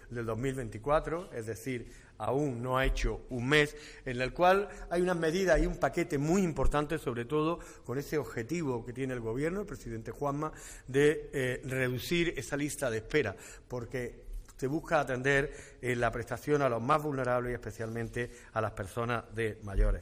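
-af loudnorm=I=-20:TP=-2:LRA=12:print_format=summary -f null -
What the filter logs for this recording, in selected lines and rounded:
Input Integrated:    -32.8 LUFS
Input True Peak:     -12.0 dBTP
Input LRA:             5.0 LU
Input Threshold:     -42.9 LUFS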